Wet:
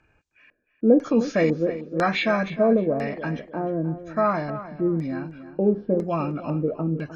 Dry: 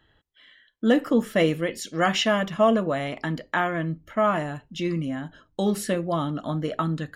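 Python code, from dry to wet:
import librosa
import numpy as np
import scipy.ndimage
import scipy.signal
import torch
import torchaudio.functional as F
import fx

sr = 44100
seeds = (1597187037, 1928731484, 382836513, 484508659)

y = fx.freq_compress(x, sr, knee_hz=1400.0, ratio=1.5)
y = fx.filter_lfo_lowpass(y, sr, shape='square', hz=1.0, low_hz=460.0, high_hz=6800.0, q=1.9)
y = fx.echo_tape(y, sr, ms=308, feedback_pct=30, wet_db=-12.0, lp_hz=3100.0, drive_db=6.0, wow_cents=23)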